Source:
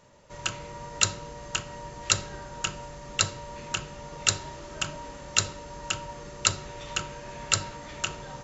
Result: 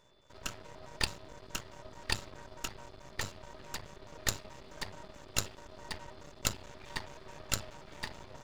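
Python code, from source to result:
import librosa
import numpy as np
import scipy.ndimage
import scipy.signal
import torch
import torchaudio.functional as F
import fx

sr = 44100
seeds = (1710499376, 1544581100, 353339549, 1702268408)

y = fx.pitch_trill(x, sr, semitones=-7.0, every_ms=107)
y = np.maximum(y, 0.0)
y = y + 10.0 ** (-66.0 / 20.0) * np.sin(2.0 * np.pi * 3500.0 * np.arange(len(y)) / sr)
y = F.gain(torch.from_numpy(y), -5.0).numpy()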